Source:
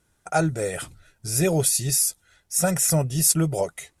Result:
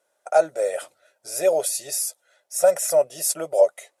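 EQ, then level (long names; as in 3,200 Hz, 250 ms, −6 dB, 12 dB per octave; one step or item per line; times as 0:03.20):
high-pass with resonance 580 Hz, resonance Q 6.5
−4.5 dB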